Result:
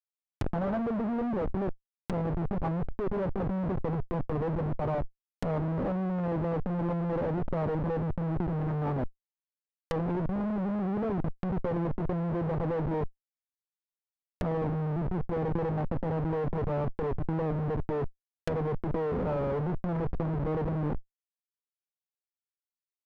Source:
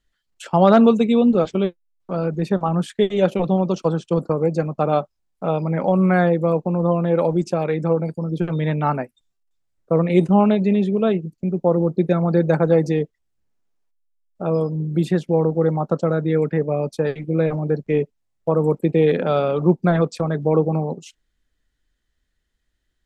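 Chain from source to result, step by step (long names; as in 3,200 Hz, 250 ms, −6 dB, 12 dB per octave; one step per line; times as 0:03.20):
comparator with hysteresis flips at −27 dBFS
treble cut that deepens with the level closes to 1,000 Hz, closed at −21.5 dBFS
compressor whose output falls as the input rises −27 dBFS, ratio −1
level −2.5 dB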